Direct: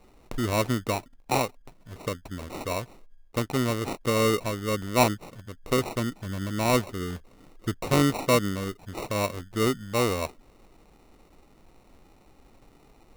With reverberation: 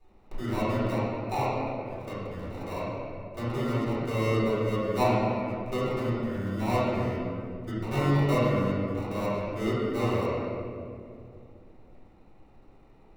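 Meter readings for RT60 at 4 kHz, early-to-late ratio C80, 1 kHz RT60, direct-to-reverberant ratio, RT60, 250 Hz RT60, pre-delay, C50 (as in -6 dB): 1.4 s, -1.5 dB, 2.0 s, -13.0 dB, 2.4 s, 3.2 s, 3 ms, -4.0 dB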